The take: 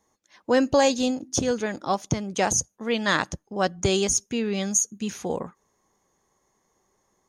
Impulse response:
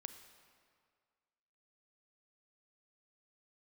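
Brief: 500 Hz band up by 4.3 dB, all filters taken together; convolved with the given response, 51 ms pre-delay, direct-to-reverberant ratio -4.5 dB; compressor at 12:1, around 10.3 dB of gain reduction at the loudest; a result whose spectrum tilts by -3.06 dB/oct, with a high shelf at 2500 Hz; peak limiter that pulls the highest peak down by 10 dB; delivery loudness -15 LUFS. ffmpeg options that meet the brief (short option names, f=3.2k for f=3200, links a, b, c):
-filter_complex "[0:a]equalizer=f=500:t=o:g=4.5,highshelf=f=2.5k:g=8,acompressor=threshold=-21dB:ratio=12,alimiter=limit=-18.5dB:level=0:latency=1,asplit=2[a][b];[1:a]atrim=start_sample=2205,adelay=51[c];[b][c]afir=irnorm=-1:irlink=0,volume=9dB[d];[a][d]amix=inputs=2:normalize=0,volume=8.5dB"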